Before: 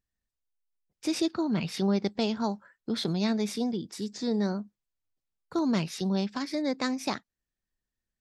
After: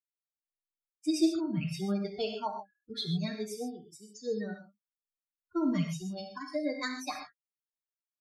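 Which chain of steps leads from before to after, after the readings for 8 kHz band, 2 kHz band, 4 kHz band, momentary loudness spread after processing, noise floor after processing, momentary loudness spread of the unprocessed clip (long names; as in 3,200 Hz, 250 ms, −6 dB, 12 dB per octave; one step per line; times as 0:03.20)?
−4.0 dB, −3.0 dB, −4.5 dB, 14 LU, below −85 dBFS, 7 LU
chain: spectral dynamics exaggerated over time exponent 3
comb filter 6.6 ms, depth 57%
reverb whose tail is shaped and stops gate 160 ms flat, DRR 3 dB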